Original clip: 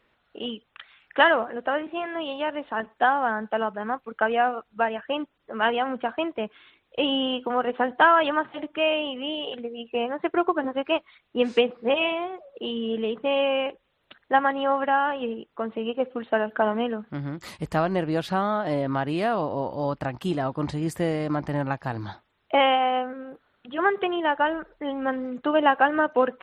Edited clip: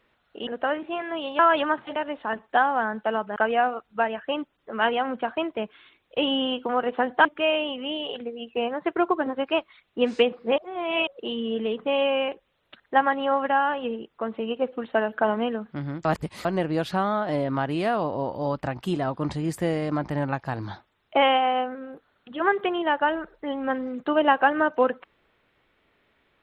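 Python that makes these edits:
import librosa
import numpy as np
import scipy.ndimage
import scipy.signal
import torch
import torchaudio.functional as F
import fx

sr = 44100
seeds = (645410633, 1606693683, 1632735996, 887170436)

y = fx.edit(x, sr, fx.cut(start_s=0.47, length_s=1.04),
    fx.cut(start_s=3.83, length_s=0.34),
    fx.move(start_s=8.06, length_s=0.57, to_s=2.43),
    fx.reverse_span(start_s=11.96, length_s=0.49),
    fx.reverse_span(start_s=17.43, length_s=0.4), tone=tone)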